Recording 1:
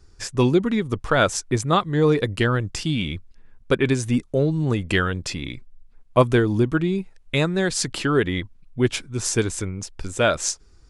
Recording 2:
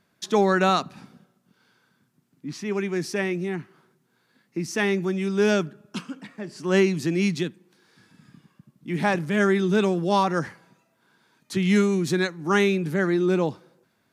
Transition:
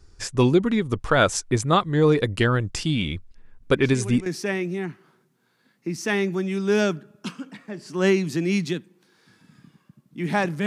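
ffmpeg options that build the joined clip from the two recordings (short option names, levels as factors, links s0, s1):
-filter_complex "[1:a]asplit=2[s0][s1];[0:a]apad=whole_dur=10.66,atrim=end=10.66,atrim=end=4.262[s2];[s1]atrim=start=2.958:end=9.36[s3];[s0]atrim=start=2.32:end=2.96,asetpts=PTS-STARTPTS,volume=0.376,afade=t=in:d=0.004:c=hsin,afade=t=out:st=0.636:d=0.004:c=hsin,adelay=3620[s4];[s2][s3]acrossfade=d=0.004:c1=hsin:c2=hsin[s5];[s5][s4]amix=inputs=2:normalize=0"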